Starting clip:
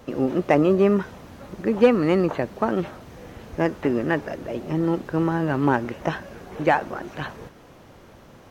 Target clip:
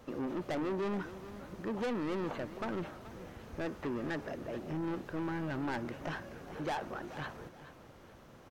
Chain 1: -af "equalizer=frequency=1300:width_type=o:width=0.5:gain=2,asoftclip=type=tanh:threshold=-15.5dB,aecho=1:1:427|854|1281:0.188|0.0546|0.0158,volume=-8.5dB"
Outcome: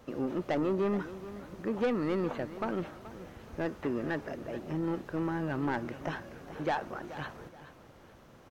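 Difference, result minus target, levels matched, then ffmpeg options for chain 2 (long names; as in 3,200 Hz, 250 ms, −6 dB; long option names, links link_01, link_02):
soft clipping: distortion −6 dB
-af "equalizer=frequency=1300:width_type=o:width=0.5:gain=2,asoftclip=type=tanh:threshold=-23.5dB,aecho=1:1:427|854|1281:0.188|0.0546|0.0158,volume=-8.5dB"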